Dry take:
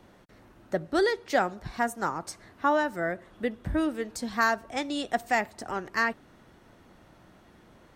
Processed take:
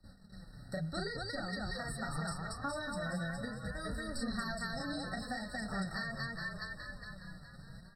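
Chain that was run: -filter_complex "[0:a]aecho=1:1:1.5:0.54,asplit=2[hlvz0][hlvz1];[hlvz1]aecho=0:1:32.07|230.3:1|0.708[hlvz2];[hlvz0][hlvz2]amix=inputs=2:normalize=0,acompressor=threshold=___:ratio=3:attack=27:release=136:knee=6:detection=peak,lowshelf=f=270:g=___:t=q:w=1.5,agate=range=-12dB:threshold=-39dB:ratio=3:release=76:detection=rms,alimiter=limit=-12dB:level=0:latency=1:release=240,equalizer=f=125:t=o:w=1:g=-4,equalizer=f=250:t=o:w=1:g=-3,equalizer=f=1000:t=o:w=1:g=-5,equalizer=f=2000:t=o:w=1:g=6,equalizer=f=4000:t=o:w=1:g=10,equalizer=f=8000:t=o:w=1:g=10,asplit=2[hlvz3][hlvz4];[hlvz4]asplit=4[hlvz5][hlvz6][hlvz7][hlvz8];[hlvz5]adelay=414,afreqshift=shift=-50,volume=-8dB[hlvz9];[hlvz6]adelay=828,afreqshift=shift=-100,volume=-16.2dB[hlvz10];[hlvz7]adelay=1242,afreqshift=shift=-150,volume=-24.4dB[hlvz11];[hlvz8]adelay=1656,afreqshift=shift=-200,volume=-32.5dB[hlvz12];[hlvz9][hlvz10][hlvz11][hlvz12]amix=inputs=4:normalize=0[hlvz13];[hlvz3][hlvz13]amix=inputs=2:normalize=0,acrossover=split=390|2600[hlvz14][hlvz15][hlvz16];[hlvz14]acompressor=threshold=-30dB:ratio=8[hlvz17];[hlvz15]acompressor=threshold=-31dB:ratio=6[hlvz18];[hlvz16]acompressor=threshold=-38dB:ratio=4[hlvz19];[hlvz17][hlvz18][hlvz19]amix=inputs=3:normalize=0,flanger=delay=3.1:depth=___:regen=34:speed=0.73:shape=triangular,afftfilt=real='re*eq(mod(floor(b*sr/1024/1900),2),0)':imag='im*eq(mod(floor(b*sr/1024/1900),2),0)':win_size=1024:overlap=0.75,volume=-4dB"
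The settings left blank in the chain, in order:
-29dB, 12, 4.4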